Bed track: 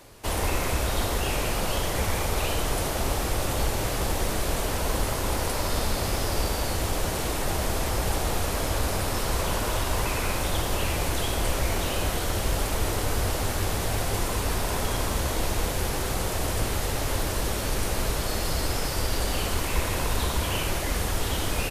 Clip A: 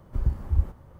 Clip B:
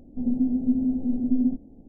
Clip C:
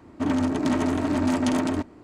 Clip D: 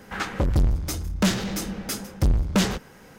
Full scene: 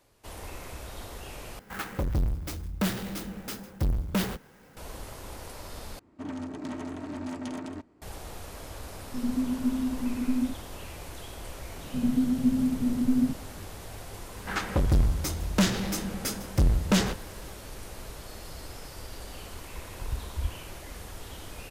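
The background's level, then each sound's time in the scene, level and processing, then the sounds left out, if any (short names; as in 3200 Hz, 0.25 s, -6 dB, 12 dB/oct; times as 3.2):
bed track -15 dB
1.59 replace with D -6.5 dB + clock jitter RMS 0.035 ms
5.99 replace with C -13 dB
8.97 add B -5 dB
11.77 add B -4.5 dB + bell 140 Hz +14.5 dB
14.36 add D -2 dB
19.86 add A -11.5 dB + comb 2.9 ms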